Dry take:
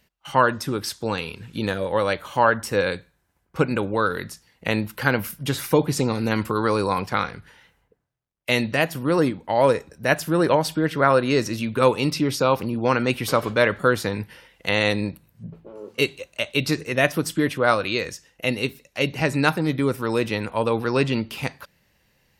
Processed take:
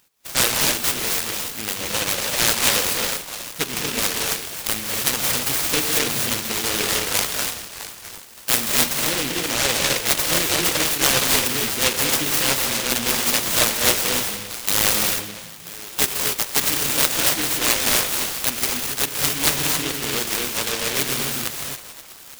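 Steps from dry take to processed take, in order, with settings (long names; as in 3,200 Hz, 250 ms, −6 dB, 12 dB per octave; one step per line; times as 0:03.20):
spectral tilt +4 dB per octave
on a send: echo through a band-pass that steps 328 ms, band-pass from 750 Hz, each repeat 0.7 octaves, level −9 dB
on the sum: reverb whose tail is shaped and stops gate 300 ms rising, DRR 0 dB
short delay modulated by noise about 2,600 Hz, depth 0.4 ms
level −1.5 dB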